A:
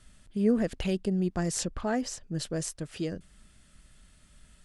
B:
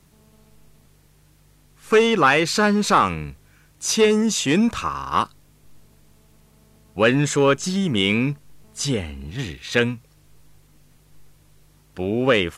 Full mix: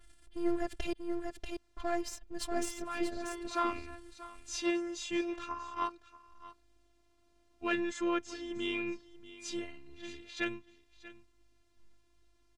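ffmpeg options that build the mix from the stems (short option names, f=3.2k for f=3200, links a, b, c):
-filter_complex "[0:a]aeval=exprs='if(lt(val(0),0),0.447*val(0),val(0))':c=same,volume=2.5dB,asplit=3[a][b][c];[a]atrim=end=0.93,asetpts=PTS-STARTPTS,afade=t=out:st=0.926:d=0.004:c=hsin[d];[b]atrim=start=0.93:end=1.77,asetpts=PTS-STARTPTS,volume=0[e];[c]atrim=start=1.77,asetpts=PTS-STARTPTS,afade=t=in:d=0.004:c=hsin[f];[d][e][f]concat=n=3:v=0:a=1,asplit=3[g][h][i];[h]volume=-5dB[j];[1:a]lowpass=6.5k,adelay=650,volume=-10.5dB,asplit=2[k][l];[l]volume=-17.5dB[m];[i]apad=whole_len=583148[n];[k][n]sidechaincompress=threshold=-43dB:ratio=8:attack=16:release=490[o];[j][m]amix=inputs=2:normalize=0,aecho=0:1:637:1[p];[g][o][p]amix=inputs=3:normalize=0,afftfilt=real='hypot(re,im)*cos(PI*b)':imag='0':win_size=512:overlap=0.75,adynamicequalizer=threshold=0.00316:dfrequency=3000:dqfactor=0.7:tfrequency=3000:tqfactor=0.7:attack=5:release=100:ratio=0.375:range=3:mode=cutabove:tftype=highshelf"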